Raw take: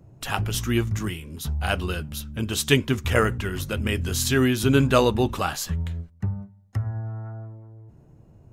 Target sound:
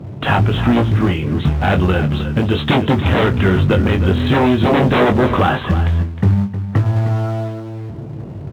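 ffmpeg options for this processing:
ffmpeg -i in.wav -filter_complex "[0:a]aresample=8000,aeval=exprs='0.708*sin(PI/2*7.08*val(0)/0.708)':channel_layout=same,aresample=44100,highpass=92,acrusher=bits=4:mode=log:mix=0:aa=0.000001,areverse,acompressor=mode=upward:threshold=-24dB:ratio=2.5,areverse,lowpass=frequency=1100:poles=1,acompressor=threshold=-11dB:ratio=6,asplit=2[link_01][link_02];[link_02]adelay=21,volume=-7dB[link_03];[link_01][link_03]amix=inputs=2:normalize=0,aecho=1:1:311:0.266" out.wav

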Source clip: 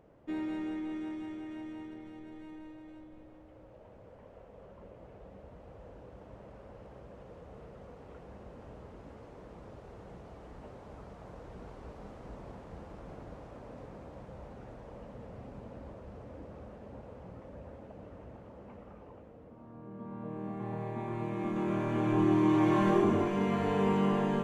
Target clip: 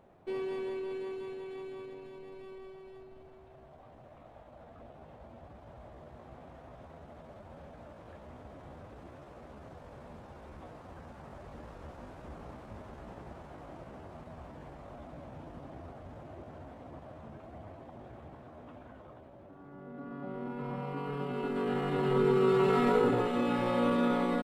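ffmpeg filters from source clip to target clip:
ffmpeg -i in.wav -af "asetrate=53981,aresample=44100,atempo=0.816958" out.wav

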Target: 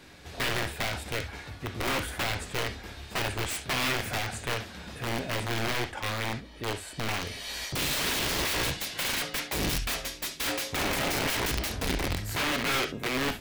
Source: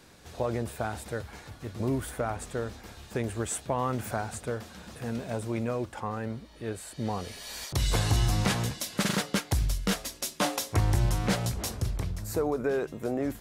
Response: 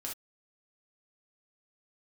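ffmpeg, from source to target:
-filter_complex "[0:a]aeval=exprs='(mod(22.4*val(0)+1,2)-1)/22.4':channel_layout=same,asplit=2[link_01][link_02];[link_02]highshelf=frequency=1500:width_type=q:width=1.5:gain=7[link_03];[1:a]atrim=start_sample=2205,lowpass=4700[link_04];[link_03][link_04]afir=irnorm=-1:irlink=0,volume=-4dB[link_05];[link_01][link_05]amix=inputs=2:normalize=0"

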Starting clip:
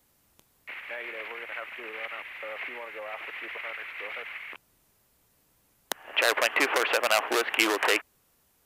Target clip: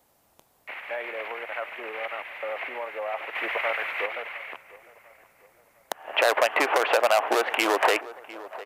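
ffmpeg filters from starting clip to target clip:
ffmpeg -i in.wav -filter_complex "[0:a]equalizer=frequency=710:width_type=o:width=1.3:gain=10.5,asettb=1/sr,asplit=3[link_01][link_02][link_03];[link_01]atrim=end=3.354[link_04];[link_02]atrim=start=3.35:end=4.06,asetpts=PTS-STARTPTS,afade=type=in:duration=0.004:curve=qsin,afade=type=out:start_time=0.706:duration=0.004:curve=qsin,acontrast=67[link_05];[link_03]atrim=start=4.056[link_06];[link_04][link_05]acrossfade=duration=0.004:curve1=hsin:curve2=qsin[link_07];[link_07][link_06]acrossfade=duration=0.004:curve1=qsin:curve2=hsin,lowshelf=frequency=73:gain=-5.5,asplit=2[link_08][link_09];[link_09]adelay=703,lowpass=frequency=2100:poles=1,volume=-18.5dB,asplit=2[link_10][link_11];[link_11]adelay=703,lowpass=frequency=2100:poles=1,volume=0.44,asplit=2[link_12][link_13];[link_13]adelay=703,lowpass=frequency=2100:poles=1,volume=0.44,asplit=2[link_14][link_15];[link_15]adelay=703,lowpass=frequency=2100:poles=1,volume=0.44[link_16];[link_08][link_10][link_12][link_14][link_16]amix=inputs=5:normalize=0,alimiter=limit=-8dB:level=0:latency=1:release=178" out.wav

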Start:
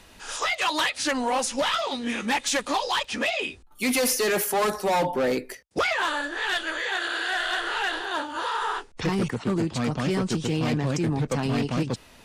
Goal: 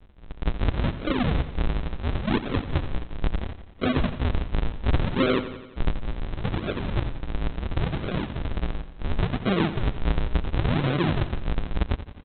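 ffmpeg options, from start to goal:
ffmpeg -i in.wav -af "aresample=8000,acrusher=samples=42:mix=1:aa=0.000001:lfo=1:lforange=67.2:lforate=0.71,aresample=44100,aecho=1:1:87|174|261|348|435|522:0.224|0.132|0.0779|0.046|0.0271|0.016,volume=1.5dB" out.wav

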